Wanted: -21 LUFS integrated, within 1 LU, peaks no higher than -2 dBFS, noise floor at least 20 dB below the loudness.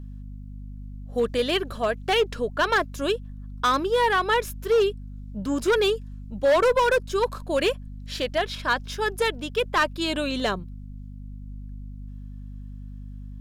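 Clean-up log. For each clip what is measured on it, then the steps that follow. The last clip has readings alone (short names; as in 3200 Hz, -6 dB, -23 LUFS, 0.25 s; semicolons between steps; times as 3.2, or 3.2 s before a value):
clipped 1.7%; flat tops at -15.5 dBFS; hum 50 Hz; harmonics up to 250 Hz; hum level -36 dBFS; loudness -24.5 LUFS; peak -15.5 dBFS; loudness target -21.0 LUFS
-> clip repair -15.5 dBFS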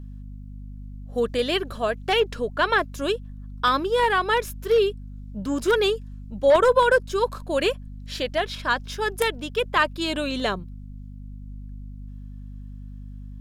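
clipped 0.0%; hum 50 Hz; harmonics up to 250 Hz; hum level -35 dBFS
-> notches 50/100/150/200/250 Hz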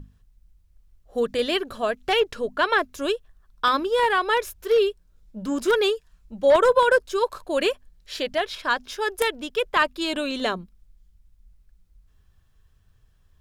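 hum none; loudness -23.5 LUFS; peak -6.5 dBFS; loudness target -21.0 LUFS
-> gain +2.5 dB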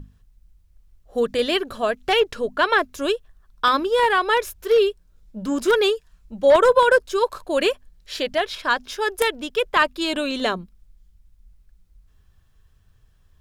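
loudness -21.0 LUFS; peak -4.0 dBFS; noise floor -58 dBFS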